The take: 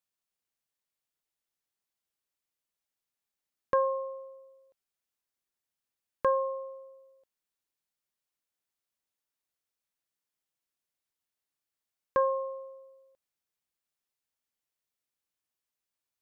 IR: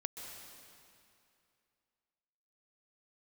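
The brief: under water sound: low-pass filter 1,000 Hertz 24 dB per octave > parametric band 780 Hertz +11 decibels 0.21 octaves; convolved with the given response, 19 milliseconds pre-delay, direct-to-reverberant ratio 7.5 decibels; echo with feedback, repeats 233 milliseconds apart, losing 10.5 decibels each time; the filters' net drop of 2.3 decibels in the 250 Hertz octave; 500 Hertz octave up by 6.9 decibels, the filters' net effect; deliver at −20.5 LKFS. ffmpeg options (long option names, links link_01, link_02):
-filter_complex "[0:a]equalizer=frequency=250:width_type=o:gain=-7.5,equalizer=frequency=500:width_type=o:gain=8,aecho=1:1:233|466|699:0.299|0.0896|0.0269,asplit=2[link_01][link_02];[1:a]atrim=start_sample=2205,adelay=19[link_03];[link_02][link_03]afir=irnorm=-1:irlink=0,volume=-6.5dB[link_04];[link_01][link_04]amix=inputs=2:normalize=0,lowpass=frequency=1000:width=0.5412,lowpass=frequency=1000:width=1.3066,equalizer=frequency=780:width_type=o:width=0.21:gain=11,volume=4.5dB"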